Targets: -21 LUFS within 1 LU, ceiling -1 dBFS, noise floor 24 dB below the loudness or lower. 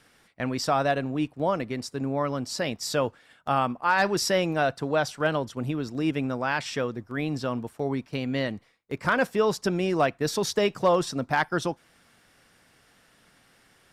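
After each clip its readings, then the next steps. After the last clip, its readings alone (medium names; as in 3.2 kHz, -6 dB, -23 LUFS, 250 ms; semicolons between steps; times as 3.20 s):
loudness -27.0 LUFS; peak level -12.0 dBFS; loudness target -21.0 LUFS
-> trim +6 dB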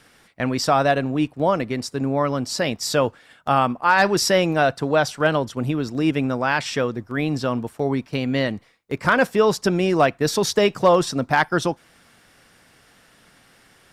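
loudness -21.0 LUFS; peak level -6.0 dBFS; noise floor -55 dBFS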